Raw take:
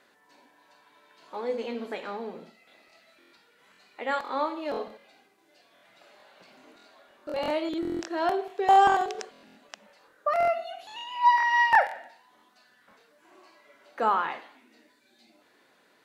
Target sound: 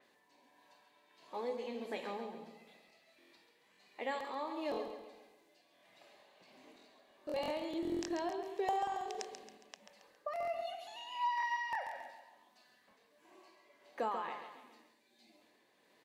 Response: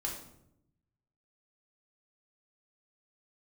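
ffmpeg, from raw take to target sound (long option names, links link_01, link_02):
-af "equalizer=frequency=1400:width=7.8:gain=-15,acompressor=threshold=-27dB:ratio=10,tremolo=f=1.5:d=0.42,aecho=1:1:137|274|411|548|685:0.376|0.169|0.0761|0.0342|0.0154,adynamicequalizer=threshold=0.00158:dfrequency=4900:dqfactor=0.7:tfrequency=4900:tqfactor=0.7:attack=5:release=100:ratio=0.375:range=2:mode=boostabove:tftype=highshelf,volume=-5dB"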